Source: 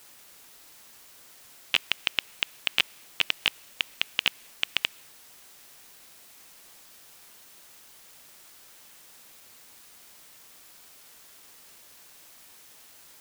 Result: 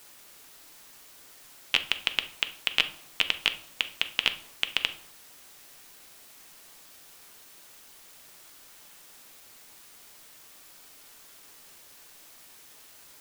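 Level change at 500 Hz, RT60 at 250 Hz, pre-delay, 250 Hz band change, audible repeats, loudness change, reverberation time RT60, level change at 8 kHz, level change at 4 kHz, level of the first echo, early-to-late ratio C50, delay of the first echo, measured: +1.0 dB, 0.80 s, 3 ms, +1.0 dB, no echo audible, +0.5 dB, 0.65 s, 0.0 dB, +0.5 dB, no echo audible, 14.0 dB, no echo audible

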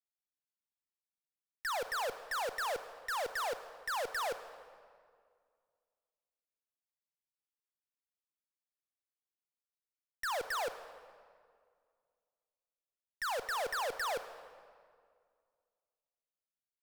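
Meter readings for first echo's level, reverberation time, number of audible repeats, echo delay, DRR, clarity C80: no echo audible, 2.0 s, no echo audible, no echo audible, 11.0 dB, 12.5 dB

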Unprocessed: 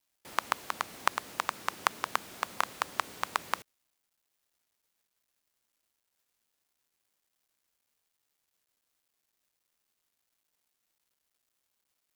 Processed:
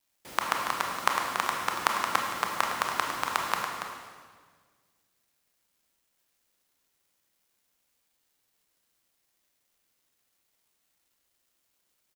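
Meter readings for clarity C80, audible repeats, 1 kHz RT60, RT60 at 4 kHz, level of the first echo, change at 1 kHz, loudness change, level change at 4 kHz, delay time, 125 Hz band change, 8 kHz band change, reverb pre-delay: 2.5 dB, 1, 1.5 s, 1.5 s, −8.5 dB, +5.0 dB, +5.0 dB, +5.0 dB, 283 ms, +6.5 dB, +5.0 dB, 23 ms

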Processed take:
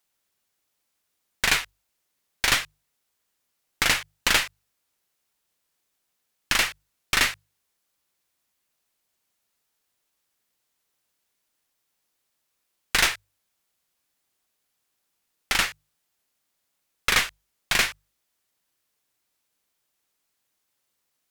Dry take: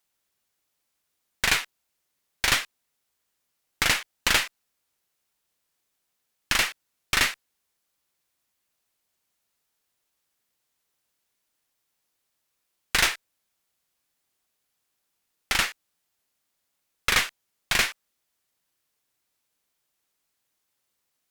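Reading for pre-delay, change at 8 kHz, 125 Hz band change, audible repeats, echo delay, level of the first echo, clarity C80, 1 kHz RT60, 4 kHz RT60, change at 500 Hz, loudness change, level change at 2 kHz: no reverb audible, +1.0 dB, 0.0 dB, no echo audible, no echo audible, no echo audible, no reverb audible, no reverb audible, no reverb audible, +1.0 dB, +1.0 dB, +1.0 dB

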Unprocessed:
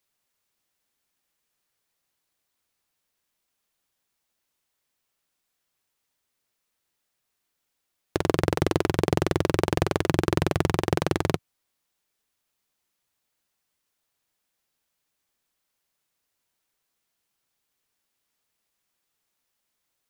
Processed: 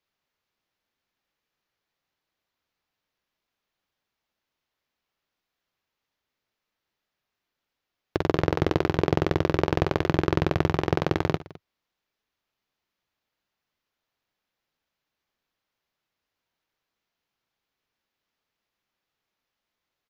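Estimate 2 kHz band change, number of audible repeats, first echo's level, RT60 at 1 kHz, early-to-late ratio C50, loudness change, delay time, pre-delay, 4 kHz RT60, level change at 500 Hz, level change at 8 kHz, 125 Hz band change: −0.5 dB, 2, −17.0 dB, no reverb audible, no reverb audible, 0.0 dB, 59 ms, no reverb audible, no reverb audible, 0.0 dB, −10.5 dB, +0.5 dB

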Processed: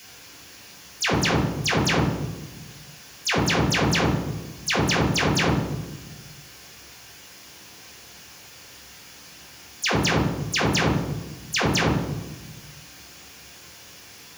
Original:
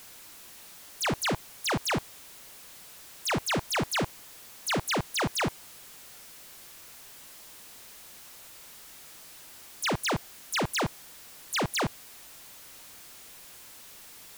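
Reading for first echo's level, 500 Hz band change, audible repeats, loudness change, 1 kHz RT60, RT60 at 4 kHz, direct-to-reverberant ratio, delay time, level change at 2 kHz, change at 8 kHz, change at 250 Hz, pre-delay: no echo audible, +7.5 dB, no echo audible, +7.0 dB, 1.1 s, 0.80 s, −3.5 dB, no echo audible, +7.5 dB, +5.0 dB, +10.5 dB, 3 ms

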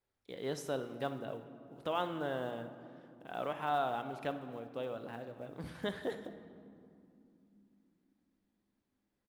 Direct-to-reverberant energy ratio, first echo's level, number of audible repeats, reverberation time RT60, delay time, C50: 8.5 dB, −17.0 dB, 1, 2.8 s, 60 ms, 10.0 dB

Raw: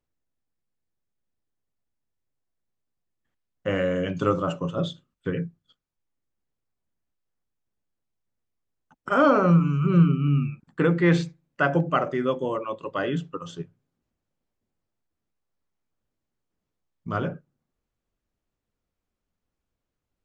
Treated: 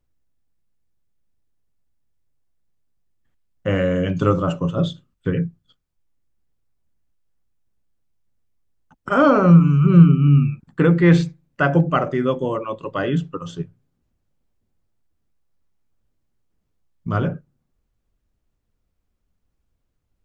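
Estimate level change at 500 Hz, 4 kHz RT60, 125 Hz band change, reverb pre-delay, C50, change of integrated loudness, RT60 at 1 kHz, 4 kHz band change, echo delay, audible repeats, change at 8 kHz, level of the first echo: +4.0 dB, no reverb audible, +8.0 dB, no reverb audible, no reverb audible, +6.5 dB, no reverb audible, +3.0 dB, no echo audible, no echo audible, can't be measured, no echo audible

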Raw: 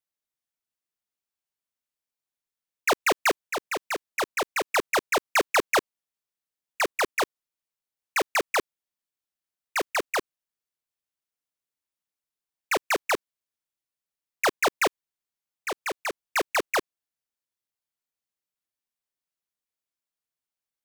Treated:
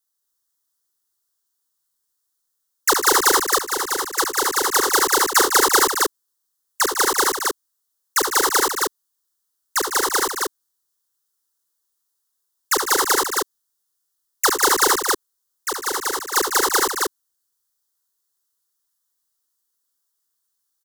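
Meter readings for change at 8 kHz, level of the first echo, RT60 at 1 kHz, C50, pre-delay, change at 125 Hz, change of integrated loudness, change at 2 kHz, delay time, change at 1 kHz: +16.0 dB, −6.5 dB, no reverb audible, no reverb audible, no reverb audible, can't be measured, +8.5 dB, +5.5 dB, 68 ms, +8.5 dB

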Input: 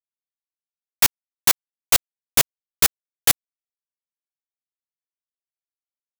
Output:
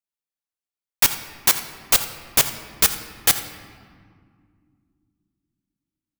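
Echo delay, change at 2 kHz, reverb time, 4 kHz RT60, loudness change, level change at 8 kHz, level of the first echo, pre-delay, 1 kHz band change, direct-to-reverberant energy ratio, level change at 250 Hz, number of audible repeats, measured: 83 ms, +0.5 dB, 2.2 s, 1.2 s, +0.5 dB, +0.5 dB, −15.5 dB, 3 ms, +0.5 dB, 8.0 dB, +1.0 dB, 1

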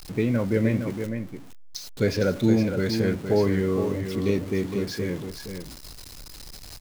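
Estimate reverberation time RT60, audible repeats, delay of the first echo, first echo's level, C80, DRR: no reverb audible, 1, 463 ms, −7.5 dB, no reverb audible, no reverb audible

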